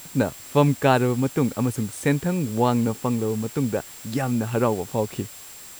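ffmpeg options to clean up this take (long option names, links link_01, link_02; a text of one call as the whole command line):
ffmpeg -i in.wav -af "bandreject=frequency=7600:width=30,afftdn=noise_reduction=26:noise_floor=-42" out.wav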